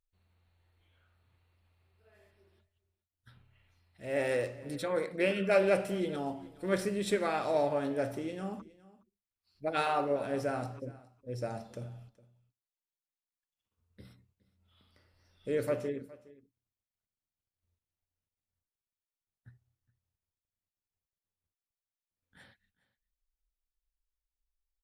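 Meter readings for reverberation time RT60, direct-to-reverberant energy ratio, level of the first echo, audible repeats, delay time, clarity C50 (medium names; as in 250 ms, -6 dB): no reverb, no reverb, -21.0 dB, 1, 414 ms, no reverb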